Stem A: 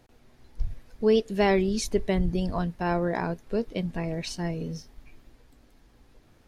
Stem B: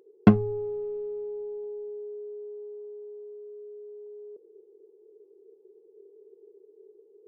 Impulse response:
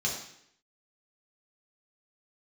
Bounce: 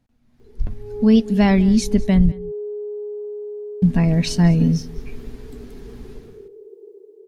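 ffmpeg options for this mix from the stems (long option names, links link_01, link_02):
-filter_complex "[0:a]lowshelf=frequency=300:width_type=q:width=3:gain=6,dynaudnorm=framelen=100:gausssize=7:maxgain=16dB,volume=-13dB,asplit=3[link_01][link_02][link_03];[link_01]atrim=end=2.32,asetpts=PTS-STARTPTS,afade=type=out:start_time=2.316:duration=0.004:curve=hsin[link_04];[link_02]atrim=start=2.32:end=3.82,asetpts=PTS-STARTPTS,volume=0[link_05];[link_03]atrim=start=3.82,asetpts=PTS-STARTPTS,afade=type=in:duration=0.004:curve=hsin[link_06];[link_04][link_05][link_06]concat=n=3:v=0:a=1,asplit=3[link_07][link_08][link_09];[link_08]volume=-22dB[link_10];[1:a]acompressor=threshold=-35dB:ratio=6,adelay=400,volume=1dB[link_11];[link_09]apad=whole_len=338536[link_12];[link_11][link_12]sidechaincompress=threshold=-32dB:ratio=8:attack=8.9:release=230[link_13];[link_10]aecho=0:1:199:1[link_14];[link_07][link_13][link_14]amix=inputs=3:normalize=0,dynaudnorm=framelen=130:gausssize=11:maxgain=10.5dB"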